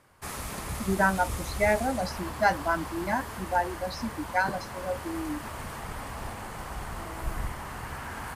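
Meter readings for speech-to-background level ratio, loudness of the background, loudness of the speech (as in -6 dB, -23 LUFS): 8.0 dB, -37.5 LUFS, -29.5 LUFS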